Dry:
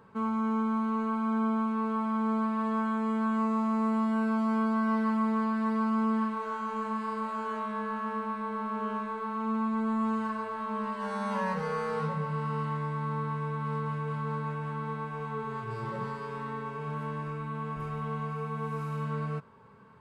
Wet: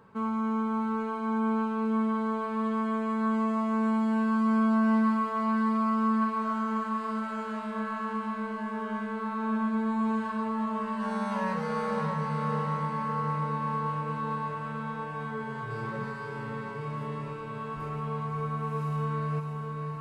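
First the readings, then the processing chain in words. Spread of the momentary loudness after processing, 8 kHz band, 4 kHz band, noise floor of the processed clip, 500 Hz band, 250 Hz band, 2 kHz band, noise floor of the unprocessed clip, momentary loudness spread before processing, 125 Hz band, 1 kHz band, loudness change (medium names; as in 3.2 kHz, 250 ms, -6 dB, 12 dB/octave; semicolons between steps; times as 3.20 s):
10 LU, no reading, +2.0 dB, -37 dBFS, +1.0 dB, +1.5 dB, +2.0 dB, -38 dBFS, 8 LU, +1.0 dB, +1.5 dB, +1.5 dB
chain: echo that smears into a reverb 614 ms, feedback 65%, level -5.5 dB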